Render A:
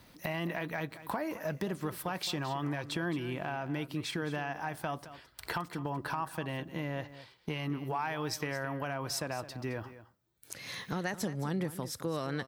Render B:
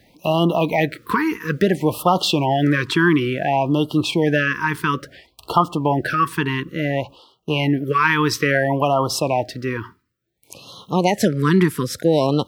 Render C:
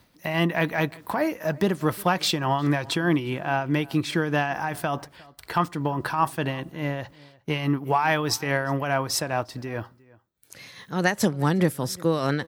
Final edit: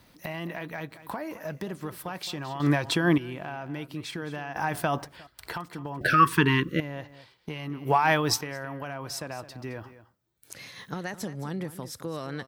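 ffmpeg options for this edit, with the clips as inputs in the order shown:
-filter_complex "[2:a]asplit=4[s0][s1][s2][s3];[0:a]asplit=6[s4][s5][s6][s7][s8][s9];[s4]atrim=end=2.602[s10];[s0]atrim=start=2.598:end=3.182[s11];[s5]atrim=start=3.178:end=4.562[s12];[s1]atrim=start=4.558:end=5.272[s13];[s6]atrim=start=5.268:end=6.012[s14];[1:a]atrim=start=6.008:end=6.802[s15];[s7]atrim=start=6.798:end=7.852[s16];[s2]atrim=start=7.848:end=8.412[s17];[s8]atrim=start=8.408:end=10.532[s18];[s3]atrim=start=10.528:end=10.942[s19];[s9]atrim=start=10.938[s20];[s10][s11]acrossfade=d=0.004:c1=hsin:c2=hsin[s21];[s21][s12]acrossfade=d=0.004:c1=hsin:c2=hsin[s22];[s22][s13]acrossfade=d=0.004:c1=hsin:c2=hsin[s23];[s23][s14]acrossfade=d=0.004:c1=hsin:c2=hsin[s24];[s24][s15]acrossfade=d=0.004:c1=hsin:c2=hsin[s25];[s25][s16]acrossfade=d=0.004:c1=hsin:c2=hsin[s26];[s26][s17]acrossfade=d=0.004:c1=hsin:c2=hsin[s27];[s27][s18]acrossfade=d=0.004:c1=hsin:c2=hsin[s28];[s28][s19]acrossfade=d=0.004:c1=hsin:c2=hsin[s29];[s29][s20]acrossfade=d=0.004:c1=hsin:c2=hsin"

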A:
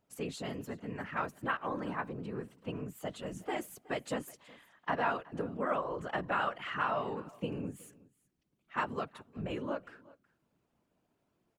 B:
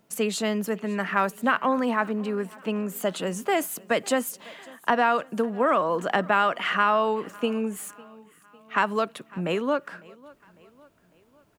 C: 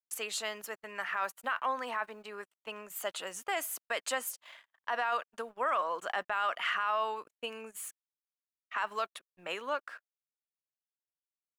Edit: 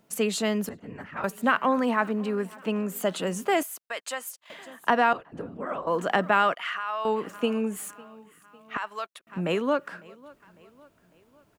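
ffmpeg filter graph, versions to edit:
-filter_complex "[0:a]asplit=2[s0][s1];[2:a]asplit=3[s2][s3][s4];[1:a]asplit=6[s5][s6][s7][s8][s9][s10];[s5]atrim=end=0.692[s11];[s0]atrim=start=0.688:end=1.242[s12];[s6]atrim=start=1.238:end=3.632[s13];[s2]atrim=start=3.628:end=4.502[s14];[s7]atrim=start=4.498:end=5.132[s15];[s1]atrim=start=5.128:end=5.872[s16];[s8]atrim=start=5.868:end=6.542[s17];[s3]atrim=start=6.538:end=7.052[s18];[s9]atrim=start=7.048:end=8.772[s19];[s4]atrim=start=8.768:end=9.272[s20];[s10]atrim=start=9.268[s21];[s11][s12]acrossfade=d=0.004:c1=hsin:c2=hsin[s22];[s22][s13]acrossfade=d=0.004:c1=hsin:c2=hsin[s23];[s23][s14]acrossfade=d=0.004:c1=hsin:c2=hsin[s24];[s24][s15]acrossfade=d=0.004:c1=hsin:c2=hsin[s25];[s25][s16]acrossfade=d=0.004:c1=hsin:c2=hsin[s26];[s26][s17]acrossfade=d=0.004:c1=hsin:c2=hsin[s27];[s27][s18]acrossfade=d=0.004:c1=hsin:c2=hsin[s28];[s28][s19]acrossfade=d=0.004:c1=hsin:c2=hsin[s29];[s29][s20]acrossfade=d=0.004:c1=hsin:c2=hsin[s30];[s30][s21]acrossfade=d=0.004:c1=hsin:c2=hsin"

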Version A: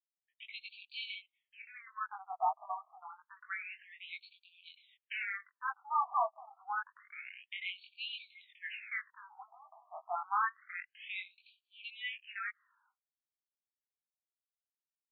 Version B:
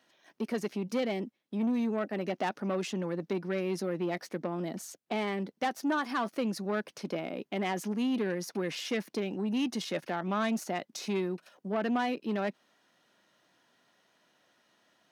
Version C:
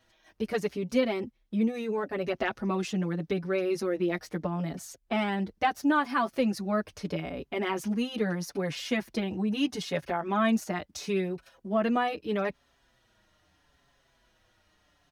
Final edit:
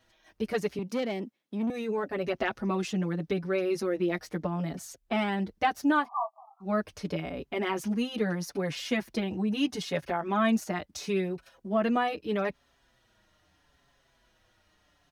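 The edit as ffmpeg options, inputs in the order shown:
-filter_complex "[2:a]asplit=3[s0][s1][s2];[s0]atrim=end=0.792[s3];[1:a]atrim=start=0.788:end=1.702[s4];[s1]atrim=start=1.698:end=6.09[s5];[0:a]atrim=start=5.99:end=6.7[s6];[s2]atrim=start=6.6[s7];[s3][s4]acrossfade=d=0.004:c1=hsin:c2=hsin[s8];[s8][s5]acrossfade=d=0.004:c1=hsin:c2=hsin[s9];[s9][s6]acrossfade=d=0.1:c1=tri:c2=tri[s10];[s10][s7]acrossfade=d=0.1:c1=tri:c2=tri"

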